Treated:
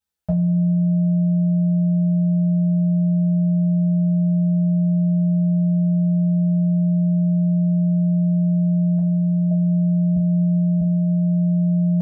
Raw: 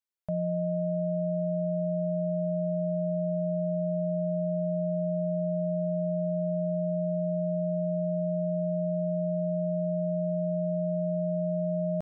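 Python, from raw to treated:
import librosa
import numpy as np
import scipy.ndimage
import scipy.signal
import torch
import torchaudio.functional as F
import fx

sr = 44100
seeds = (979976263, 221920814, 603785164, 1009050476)

y = fx.dynamic_eq(x, sr, hz=450.0, q=1.7, threshold_db=-49.0, ratio=4.0, max_db=-7, at=(8.98, 9.51))
y = fx.highpass(y, sr, hz=100.0, slope=12, at=(10.16, 10.81))
y = fx.low_shelf(y, sr, hz=150.0, db=10.5)
y = fx.rev_double_slope(y, sr, seeds[0], early_s=0.21, late_s=1.9, knee_db=-22, drr_db=-7.5)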